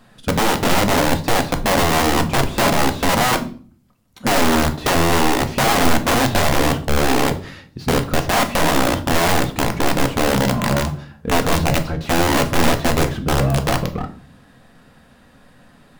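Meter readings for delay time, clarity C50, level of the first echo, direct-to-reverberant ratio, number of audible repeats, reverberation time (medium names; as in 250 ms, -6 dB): no echo, 14.0 dB, no echo, 6.0 dB, no echo, 0.45 s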